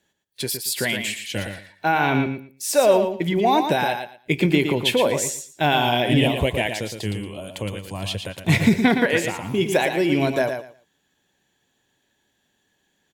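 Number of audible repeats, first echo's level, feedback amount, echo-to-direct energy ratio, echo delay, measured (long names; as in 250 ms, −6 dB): 2, −7.0 dB, 19%, −7.0 dB, 115 ms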